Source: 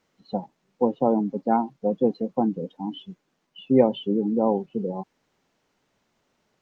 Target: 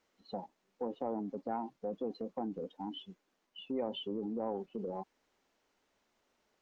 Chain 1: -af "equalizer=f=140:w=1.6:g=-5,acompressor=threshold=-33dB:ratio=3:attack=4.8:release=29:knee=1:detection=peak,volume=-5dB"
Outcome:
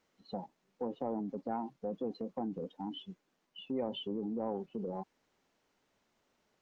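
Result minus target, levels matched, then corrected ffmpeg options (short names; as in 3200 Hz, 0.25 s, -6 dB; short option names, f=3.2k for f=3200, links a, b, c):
125 Hz band +2.5 dB
-af "equalizer=f=140:w=1.6:g=-13.5,acompressor=threshold=-33dB:ratio=3:attack=4.8:release=29:knee=1:detection=peak,volume=-5dB"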